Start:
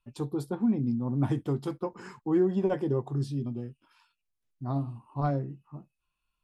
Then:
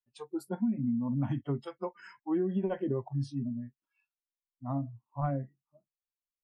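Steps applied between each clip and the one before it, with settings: spectral noise reduction 28 dB; dynamic EQ 220 Hz, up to +4 dB, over -38 dBFS, Q 2; compressor, threshold -25 dBFS, peak gain reduction 8 dB; gain -1.5 dB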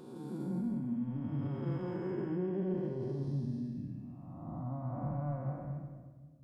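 time blur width 0.679 s; limiter -36 dBFS, peak gain reduction 9 dB; shoebox room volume 1900 m³, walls mixed, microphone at 1 m; gain +4.5 dB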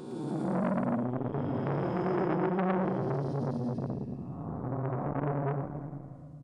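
downsampling 22050 Hz; feedback echo 0.112 s, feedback 49%, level -3 dB; core saturation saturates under 960 Hz; gain +8 dB

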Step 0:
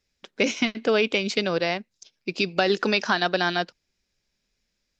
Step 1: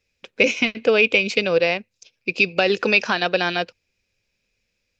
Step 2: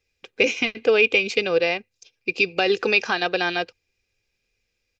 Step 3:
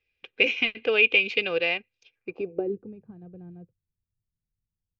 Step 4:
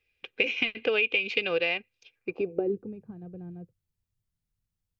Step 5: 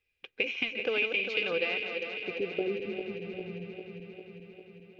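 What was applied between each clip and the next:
thirty-one-band EQ 100 Hz +12 dB, 500 Hz +9 dB, 2500 Hz +12 dB
comb 2.5 ms, depth 40%; gain -2.5 dB
low-pass sweep 2900 Hz -> 150 Hz, 2.06–2.86; gain -7 dB
compressor 6:1, threshold -25 dBFS, peak gain reduction 10 dB; gain +2.5 dB
regenerating reverse delay 0.2 s, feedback 81%, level -7 dB; gain -4.5 dB

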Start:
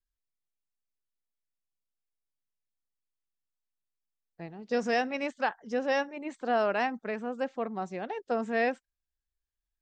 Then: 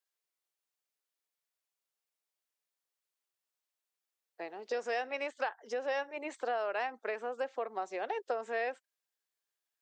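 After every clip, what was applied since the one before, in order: dynamic EQ 5700 Hz, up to -5 dB, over -57 dBFS, Q 3.1; compressor, threshold -36 dBFS, peak gain reduction 13 dB; HPF 390 Hz 24 dB/oct; gain +5 dB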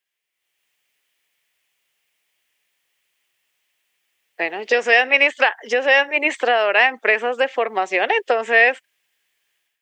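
band shelf 2400 Hz +10.5 dB 1.1 oct; AGC gain up to 12 dB; gain +4 dB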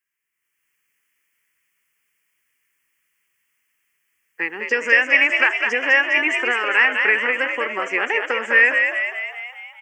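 fixed phaser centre 1600 Hz, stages 4; frequency-shifting echo 0.204 s, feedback 57%, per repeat +61 Hz, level -5 dB; gain +1.5 dB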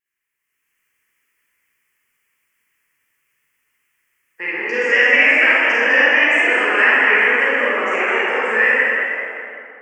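ending faded out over 1.75 s; vibrato 5.7 Hz 76 cents; reverb RT60 2.7 s, pre-delay 28 ms, DRR -9 dB; gain -5 dB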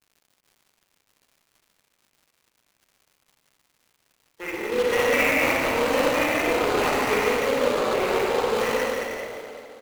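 median filter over 25 samples; crackle 200/s -48 dBFS; echo 0.148 s -8.5 dB

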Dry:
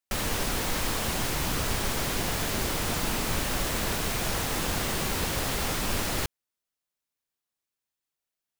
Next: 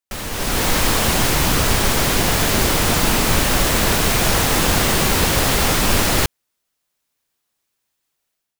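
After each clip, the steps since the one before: AGC gain up to 13 dB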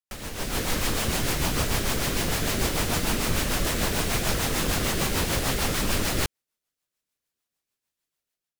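rotary speaker horn 6.7 Hz; gain -6.5 dB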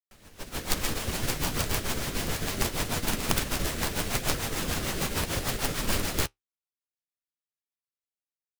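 flange 0.7 Hz, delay 6.6 ms, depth 9.1 ms, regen -50%; wrapped overs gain 18.5 dB; upward expander 2.5:1, over -38 dBFS; gain +5 dB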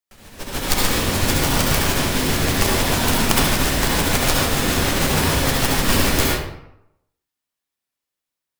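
reverb RT60 0.85 s, pre-delay 61 ms, DRR -2 dB; gain +7.5 dB

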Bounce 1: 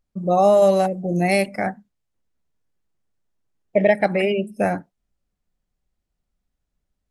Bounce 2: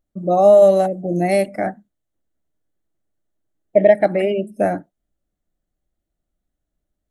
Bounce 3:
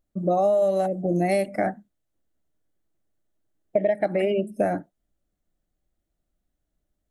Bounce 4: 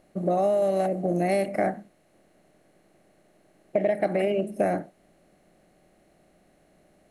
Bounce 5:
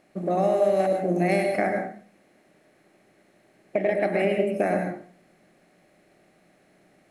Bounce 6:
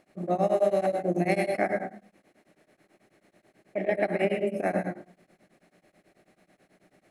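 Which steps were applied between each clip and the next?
thirty-one-band EQ 315 Hz +9 dB, 630 Hz +7 dB, 1000 Hz -5 dB, 2500 Hz -7 dB, 5000 Hz -9 dB; gain -1 dB
compressor 6:1, threshold -19 dBFS, peak gain reduction 12 dB
per-bin compression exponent 0.6; gain -4 dB
reverb RT60 0.45 s, pre-delay 0.101 s, DRR 5 dB; gain -1.5 dB
beating tremolo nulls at 9.2 Hz

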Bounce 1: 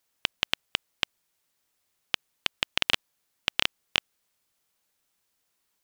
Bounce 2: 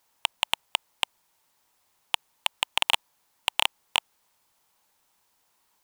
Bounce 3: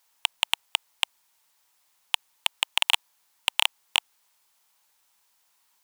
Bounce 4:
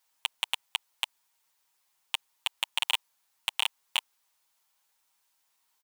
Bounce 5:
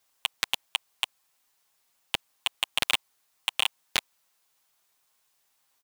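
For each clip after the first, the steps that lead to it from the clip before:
bell 910 Hz +10 dB 0.64 oct; overloaded stage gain 11.5 dB; gain +5.5 dB
tilt shelf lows -6 dB, about 770 Hz; gain -3.5 dB
comb 7.5 ms, depth 70%; gain -7.5 dB
polarity switched at an audio rate 130 Hz; gain +2.5 dB

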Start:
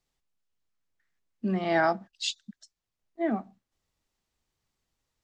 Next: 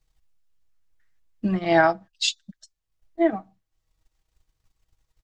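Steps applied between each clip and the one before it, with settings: resonant low shelf 120 Hz +10.5 dB, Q 1.5; comb 6.3 ms, depth 68%; transient shaper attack +7 dB, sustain -5 dB; gain +1.5 dB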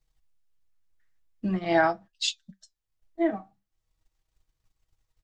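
flange 0.44 Hz, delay 5.6 ms, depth 8.4 ms, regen -66%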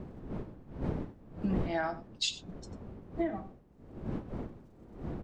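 wind noise 280 Hz -32 dBFS; compressor 12:1, threshold -28 dBFS, peak gain reduction 16 dB; echo 94 ms -15.5 dB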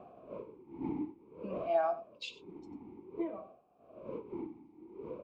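vowel sweep a-u 0.54 Hz; gain +9.5 dB

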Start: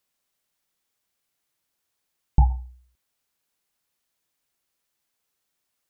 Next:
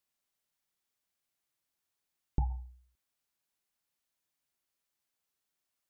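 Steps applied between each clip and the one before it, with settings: notch 480 Hz, Q 12; compressor, threshold -18 dBFS, peak gain reduction 7.5 dB; gain -7.5 dB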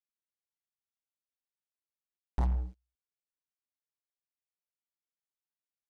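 air absorption 82 m; sample leveller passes 5; gain -7.5 dB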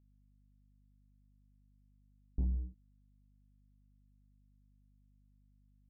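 ladder low-pass 390 Hz, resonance 25%; hum 50 Hz, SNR 22 dB; gain +1.5 dB

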